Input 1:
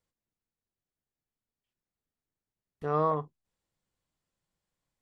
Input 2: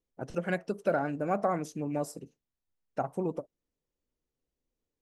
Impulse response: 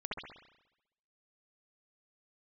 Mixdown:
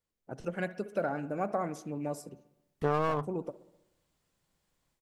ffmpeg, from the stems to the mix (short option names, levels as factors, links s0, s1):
-filter_complex "[0:a]dynaudnorm=f=260:g=3:m=3.98,aeval=exprs='clip(val(0),-1,0.0708)':c=same,volume=0.668[s0];[1:a]adelay=100,volume=0.631,asplit=2[s1][s2];[s2]volume=0.15[s3];[2:a]atrim=start_sample=2205[s4];[s3][s4]afir=irnorm=-1:irlink=0[s5];[s0][s1][s5]amix=inputs=3:normalize=0,acompressor=threshold=0.0708:ratio=12"